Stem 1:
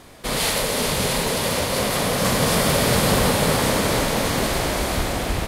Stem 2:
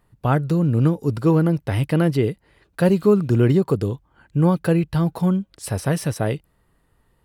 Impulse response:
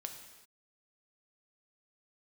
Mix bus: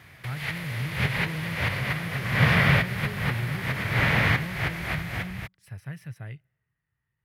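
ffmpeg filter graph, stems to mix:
-filter_complex "[0:a]dynaudnorm=f=170:g=9:m=11.5dB,volume=-4dB[a];[1:a]volume=-18.5dB,asplit=3[b][c][d];[c]volume=-23.5dB[e];[d]apad=whole_len=241414[f];[a][f]sidechaincompress=threshold=-47dB:ratio=8:attack=32:release=149[g];[2:a]atrim=start_sample=2205[h];[e][h]afir=irnorm=-1:irlink=0[i];[g][b][i]amix=inputs=3:normalize=0,highpass=72,acrossover=split=3800[j][k];[k]acompressor=threshold=-40dB:ratio=4:attack=1:release=60[l];[j][l]amix=inputs=2:normalize=0,equalizer=f=125:t=o:w=1:g=9,equalizer=f=250:t=o:w=1:g=-9,equalizer=f=500:t=o:w=1:g=-9,equalizer=f=1k:t=o:w=1:g=-5,equalizer=f=2k:t=o:w=1:g=10,equalizer=f=4k:t=o:w=1:g=-4,equalizer=f=8k:t=o:w=1:g=-11"

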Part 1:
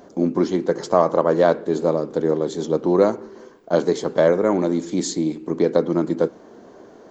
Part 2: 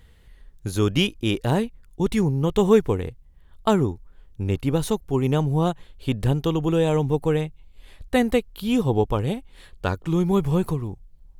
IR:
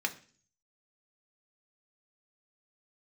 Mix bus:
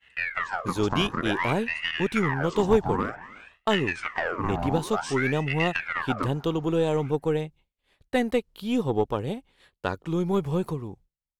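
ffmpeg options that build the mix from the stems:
-filter_complex "[0:a]acompressor=threshold=-19dB:ratio=6,aeval=exprs='val(0)*sin(2*PI*1400*n/s+1400*0.7/0.54*sin(2*PI*0.54*n/s))':c=same,volume=-3dB,asplit=2[a][b];[b]volume=-23.5dB[c];[1:a]highpass=f=210:p=1,adynamicequalizer=threshold=0.00891:dfrequency=1900:dqfactor=0.7:tfrequency=1900:tqfactor=0.7:attack=5:release=100:ratio=0.375:range=1.5:mode=cutabove:tftype=bell,dynaudnorm=f=180:g=3:m=5.5dB,volume=-7dB[d];[c]aecho=0:1:304:1[e];[a][d][e]amix=inputs=3:normalize=0,agate=range=-33dB:threshold=-46dB:ratio=3:detection=peak,highshelf=f=8.6k:g=-10.5,aeval=exprs='0.422*(cos(1*acos(clip(val(0)/0.422,-1,1)))-cos(1*PI/2))+0.015*(cos(6*acos(clip(val(0)/0.422,-1,1)))-cos(6*PI/2))':c=same"

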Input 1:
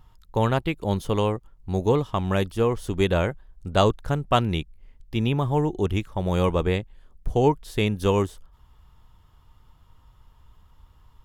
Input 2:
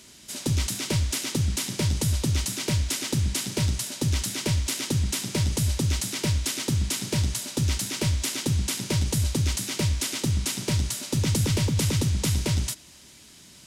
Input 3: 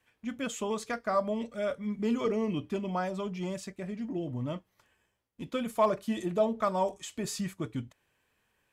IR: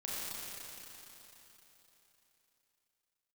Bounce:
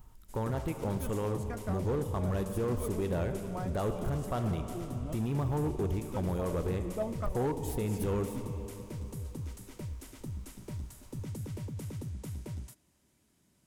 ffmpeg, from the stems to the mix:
-filter_complex "[0:a]volume=-2dB,asplit=2[a][b];[b]volume=-16.5dB[c];[1:a]volume=-15dB[d];[2:a]adelay=600,volume=-6.5dB[e];[a][e]amix=inputs=2:normalize=0,highshelf=f=5.9k:g=11.5,alimiter=limit=-22dB:level=0:latency=1:release=149,volume=0dB[f];[3:a]atrim=start_sample=2205[g];[c][g]afir=irnorm=-1:irlink=0[h];[d][f][h]amix=inputs=3:normalize=0,equalizer=f=4.3k:w=0.5:g=-14,asoftclip=type=hard:threshold=-25.5dB"

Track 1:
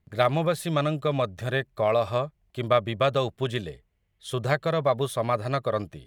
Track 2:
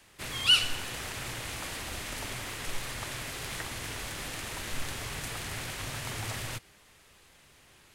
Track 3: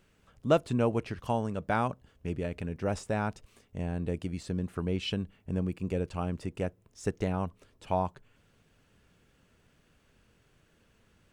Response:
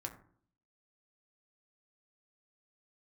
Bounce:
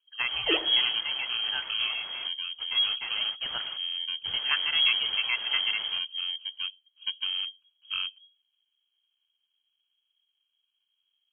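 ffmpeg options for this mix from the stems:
-filter_complex "[0:a]tiltshelf=f=760:g=-5,volume=2.5dB,afade=t=out:st=1.53:d=0.66:silence=0.375837,afade=t=in:st=3.06:d=0.55:silence=0.237137,asplit=2[a][b];[1:a]volume=-4dB[c];[2:a]acrusher=samples=33:mix=1:aa=0.000001,volume=-8dB,asplit=2[d][e];[e]volume=-16.5dB[f];[b]apad=whole_len=350560[g];[c][g]sidechaingate=range=-23dB:threshold=-48dB:ratio=16:detection=peak[h];[3:a]atrim=start_sample=2205[i];[f][i]afir=irnorm=-1:irlink=0[j];[a][h][d][j]amix=inputs=4:normalize=0,afftdn=nr=13:nf=-49,lowshelf=f=190:g=11.5,lowpass=f=2.8k:t=q:w=0.5098,lowpass=f=2.8k:t=q:w=0.6013,lowpass=f=2.8k:t=q:w=0.9,lowpass=f=2.8k:t=q:w=2.563,afreqshift=-3300"

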